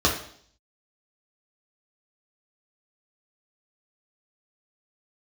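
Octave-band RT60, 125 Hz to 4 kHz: 0.65, 0.65, 0.60, 0.55, 0.55, 0.65 seconds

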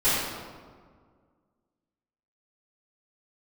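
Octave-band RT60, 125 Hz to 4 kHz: 2.1, 2.2, 1.9, 1.7, 1.2, 0.95 seconds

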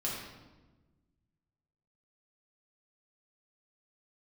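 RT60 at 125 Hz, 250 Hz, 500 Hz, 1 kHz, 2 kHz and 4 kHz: 2.1, 1.8, 1.3, 1.1, 0.95, 0.85 seconds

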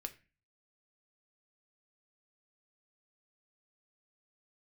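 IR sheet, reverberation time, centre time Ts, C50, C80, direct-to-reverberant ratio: 0.30 s, 5 ms, 16.0 dB, 21.0 dB, 6.0 dB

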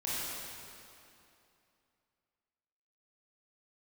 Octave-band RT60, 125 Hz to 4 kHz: 2.7, 2.8, 2.7, 2.7, 2.5, 2.3 seconds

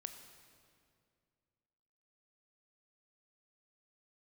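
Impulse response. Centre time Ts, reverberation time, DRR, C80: 29 ms, 2.3 s, 7.0 dB, 9.0 dB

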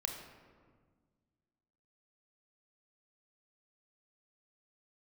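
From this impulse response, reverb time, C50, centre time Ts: 1.6 s, 5.0 dB, 42 ms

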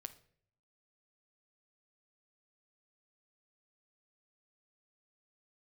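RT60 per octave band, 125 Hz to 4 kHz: 0.95, 0.75, 0.70, 0.50, 0.55, 0.45 seconds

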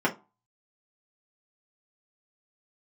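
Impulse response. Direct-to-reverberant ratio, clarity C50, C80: −4.5 dB, 16.5 dB, 24.0 dB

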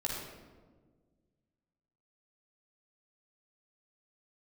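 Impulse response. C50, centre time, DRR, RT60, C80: 0.0 dB, 77 ms, −4.0 dB, 1.5 s, 2.5 dB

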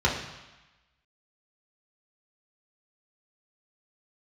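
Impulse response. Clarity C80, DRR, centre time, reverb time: 8.0 dB, −4.5 dB, 38 ms, 1.1 s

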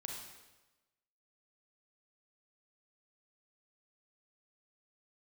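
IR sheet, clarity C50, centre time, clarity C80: 1.5 dB, 58 ms, 4.5 dB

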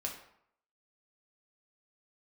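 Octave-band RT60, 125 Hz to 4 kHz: 0.65, 0.65, 0.65, 0.70, 0.60, 0.45 seconds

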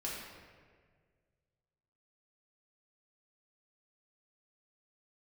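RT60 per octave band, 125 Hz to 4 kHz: 2.6, 1.9, 2.0, 1.5, 1.5, 1.1 seconds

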